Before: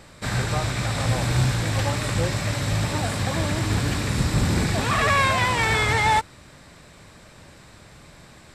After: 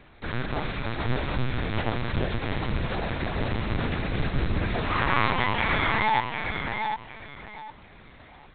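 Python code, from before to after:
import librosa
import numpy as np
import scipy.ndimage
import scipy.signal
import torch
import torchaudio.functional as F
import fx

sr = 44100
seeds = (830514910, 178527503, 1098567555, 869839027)

p1 = x + fx.echo_feedback(x, sr, ms=752, feedback_pct=24, wet_db=-5, dry=0)
p2 = fx.lpc_vocoder(p1, sr, seeds[0], excitation='pitch_kept', order=8)
y = p2 * librosa.db_to_amplitude(-4.5)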